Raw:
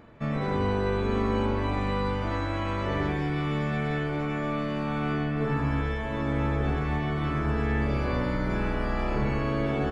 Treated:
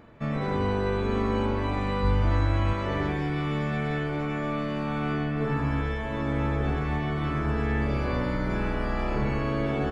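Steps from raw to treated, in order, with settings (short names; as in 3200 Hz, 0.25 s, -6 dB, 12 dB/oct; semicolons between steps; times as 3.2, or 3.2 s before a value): 2.03–2.73 bell 62 Hz +15 dB 1.4 oct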